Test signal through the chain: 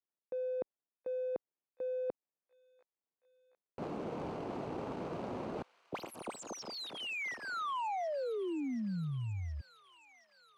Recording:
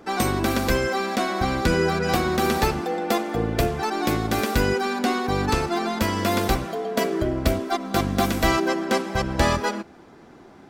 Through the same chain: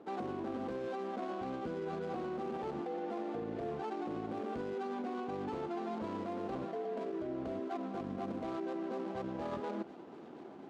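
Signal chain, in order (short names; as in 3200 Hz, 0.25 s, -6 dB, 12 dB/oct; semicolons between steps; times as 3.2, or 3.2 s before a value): median filter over 25 samples; HPF 280 Hz 12 dB/oct; tilt -2 dB/oct; limiter -21 dBFS; reverse; compressor 6:1, threshold -34 dBFS; reverse; air absorption 63 m; thin delay 0.724 s, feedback 73%, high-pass 1700 Hz, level -15.5 dB; gain -2 dB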